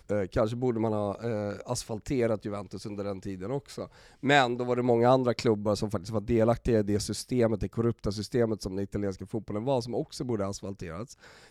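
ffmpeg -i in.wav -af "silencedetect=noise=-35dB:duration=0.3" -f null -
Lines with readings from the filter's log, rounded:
silence_start: 3.85
silence_end: 4.23 | silence_duration: 0.38
silence_start: 11.03
silence_end: 11.50 | silence_duration: 0.47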